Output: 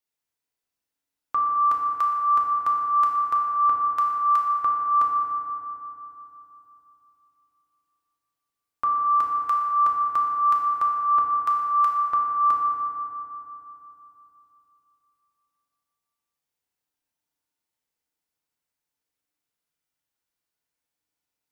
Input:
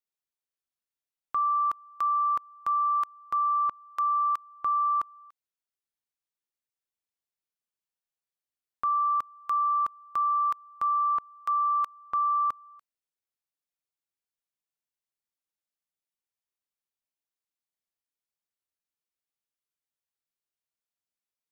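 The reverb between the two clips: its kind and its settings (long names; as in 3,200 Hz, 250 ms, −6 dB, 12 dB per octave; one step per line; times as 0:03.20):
feedback delay network reverb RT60 3.2 s, low-frequency decay 1.2×, high-frequency decay 0.4×, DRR −2 dB
level +3.5 dB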